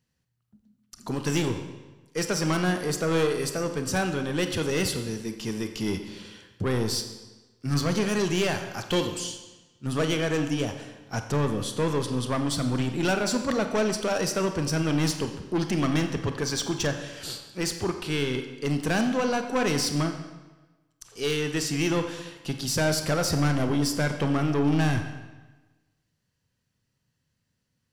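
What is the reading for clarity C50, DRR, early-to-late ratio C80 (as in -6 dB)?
8.0 dB, 6.5 dB, 9.5 dB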